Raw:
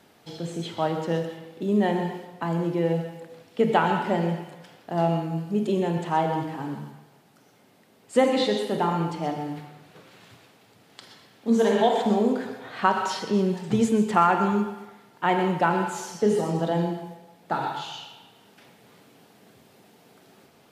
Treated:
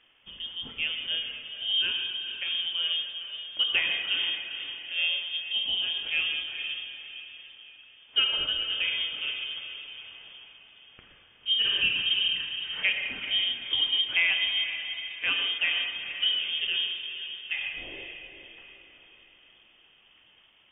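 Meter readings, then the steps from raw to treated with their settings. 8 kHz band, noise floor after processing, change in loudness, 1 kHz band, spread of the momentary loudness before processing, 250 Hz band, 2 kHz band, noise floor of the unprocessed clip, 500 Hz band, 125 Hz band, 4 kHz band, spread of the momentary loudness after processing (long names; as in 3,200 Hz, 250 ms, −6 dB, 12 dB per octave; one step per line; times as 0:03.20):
below −35 dB, −59 dBFS, −1.5 dB, −24.0 dB, 15 LU, −29.5 dB, +5.5 dB, −58 dBFS, −26.5 dB, below −25 dB, +15.0 dB, 16 LU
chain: voice inversion scrambler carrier 3,400 Hz
feedback delay with all-pass diffusion 457 ms, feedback 46%, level −9 dB
level −5.5 dB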